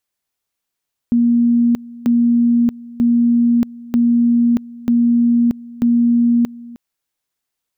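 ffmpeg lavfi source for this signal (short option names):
-f lavfi -i "aevalsrc='pow(10,(-10-21*gte(mod(t,0.94),0.63))/20)*sin(2*PI*237*t)':d=5.64:s=44100"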